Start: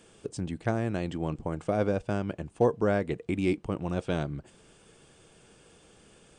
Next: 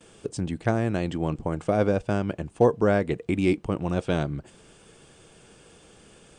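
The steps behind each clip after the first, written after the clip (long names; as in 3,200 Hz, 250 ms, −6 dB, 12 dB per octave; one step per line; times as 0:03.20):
noise gate with hold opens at −51 dBFS
level +4.5 dB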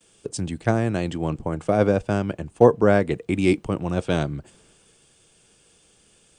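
high-shelf EQ 8,000 Hz +5.5 dB
multiband upward and downward expander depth 40%
level +2.5 dB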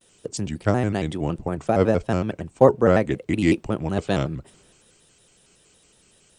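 pitch modulation by a square or saw wave square 5.4 Hz, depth 160 cents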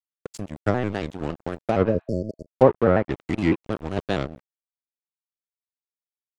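dead-zone distortion −28.5 dBFS
treble cut that deepens with the level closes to 2,000 Hz, closed at −14.5 dBFS
healed spectral selection 0:01.91–0:02.46, 660–4,400 Hz both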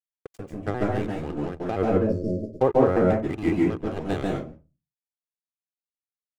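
running median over 9 samples
convolution reverb RT60 0.25 s, pre-delay 136 ms, DRR −1 dB
level −6.5 dB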